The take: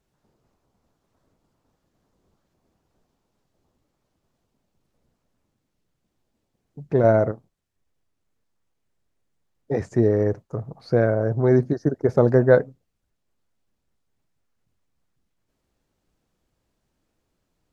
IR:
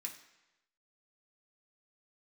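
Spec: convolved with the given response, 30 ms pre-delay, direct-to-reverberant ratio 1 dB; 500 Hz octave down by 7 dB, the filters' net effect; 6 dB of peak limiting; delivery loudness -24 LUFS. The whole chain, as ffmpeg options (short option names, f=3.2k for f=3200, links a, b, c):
-filter_complex "[0:a]equalizer=f=500:t=o:g=-9,alimiter=limit=-14dB:level=0:latency=1,asplit=2[a][b];[1:a]atrim=start_sample=2205,adelay=30[c];[b][c]afir=irnorm=-1:irlink=0,volume=2dB[d];[a][d]amix=inputs=2:normalize=0,volume=1.5dB"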